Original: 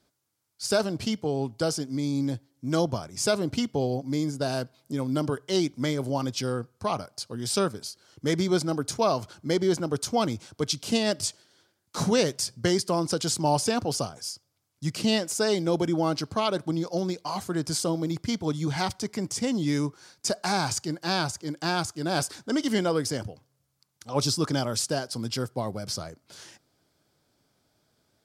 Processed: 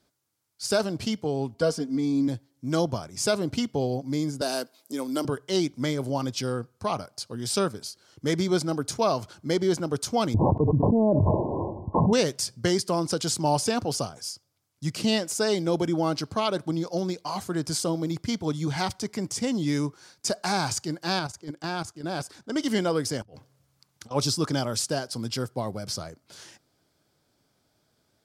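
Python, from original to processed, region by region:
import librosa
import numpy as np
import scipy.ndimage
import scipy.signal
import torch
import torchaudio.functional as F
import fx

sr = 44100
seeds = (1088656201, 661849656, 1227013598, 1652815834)

y = fx.chain(x, sr, fx.high_shelf(hz=3000.0, db=-9.0),
    fx.comb(ms=4.3, depth=0.96), at=(1.54, 2.28))
y = fx.chain(y, sr, fx.highpass(hz=240.0, slope=24),
    fx.high_shelf(hz=5800.0, db=11.0), at=(4.41, 5.25))
y = fx.chain(y, sr, fx.brickwall_lowpass(high_hz=1100.0),
    fx.low_shelf(hz=73.0, db=12.0),
    fx.env_flatten(amount_pct=100), at=(10.34, 12.13))
y = fx.chain(y, sr, fx.high_shelf(hz=3600.0, db=-4.5),
    fx.level_steps(step_db=10), at=(21.19, 22.56))
y = fx.chain(y, sr, fx.high_shelf(hz=5400.0, db=-5.5),
    fx.over_compress(threshold_db=-50.0, ratio=-1.0), at=(23.22, 24.11))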